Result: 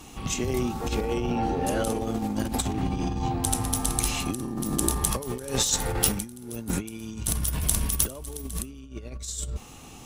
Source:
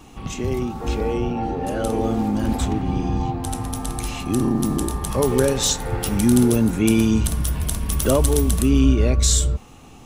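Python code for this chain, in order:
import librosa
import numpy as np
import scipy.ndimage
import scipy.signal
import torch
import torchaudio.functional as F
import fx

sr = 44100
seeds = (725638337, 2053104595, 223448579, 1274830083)

y = fx.over_compress(x, sr, threshold_db=-23.0, ratio=-0.5)
y = fx.cheby_harmonics(y, sr, harmonics=(2,), levels_db=(-14,), full_scale_db=-4.0)
y = fx.high_shelf(y, sr, hz=3400.0, db=9.0)
y = F.gain(torch.from_numpy(y), -5.5).numpy()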